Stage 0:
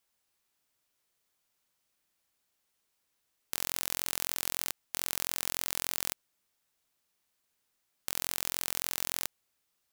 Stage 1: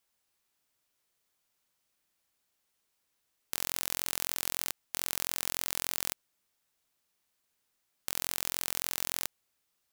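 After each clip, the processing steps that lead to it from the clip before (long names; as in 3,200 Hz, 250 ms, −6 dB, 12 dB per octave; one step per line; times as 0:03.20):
no processing that can be heard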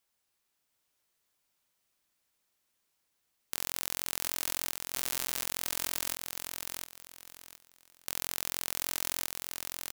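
repeating echo 716 ms, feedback 26%, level −4.5 dB
level −1 dB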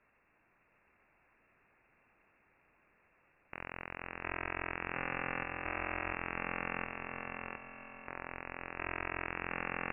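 wave folding −13.5 dBFS
feedback delay with all-pass diffusion 561 ms, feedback 49%, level −11 dB
voice inversion scrambler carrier 2,700 Hz
level +16 dB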